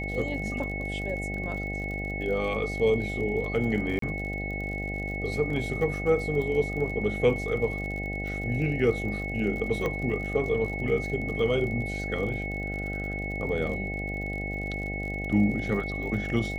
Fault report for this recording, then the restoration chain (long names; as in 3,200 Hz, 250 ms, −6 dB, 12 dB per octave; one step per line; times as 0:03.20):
mains buzz 50 Hz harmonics 16 −34 dBFS
surface crackle 47 per second −36 dBFS
whistle 2,200 Hz −34 dBFS
0:03.99–0:04.02: drop-out 33 ms
0:09.86: click −18 dBFS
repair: click removal
hum removal 50 Hz, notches 16
notch filter 2,200 Hz, Q 30
repair the gap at 0:03.99, 33 ms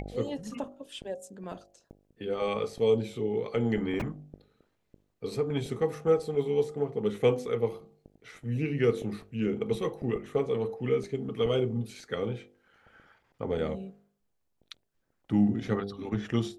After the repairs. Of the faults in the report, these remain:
none of them is left